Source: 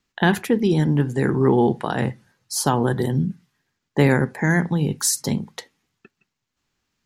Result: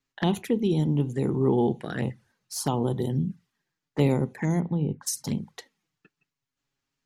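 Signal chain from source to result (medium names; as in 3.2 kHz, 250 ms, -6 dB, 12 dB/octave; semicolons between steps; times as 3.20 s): 4.59–5.06 s: low-pass 2.8 kHz -> 1.1 kHz 12 dB/octave; touch-sensitive flanger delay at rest 7.3 ms, full sweep at -17.5 dBFS; trim -5 dB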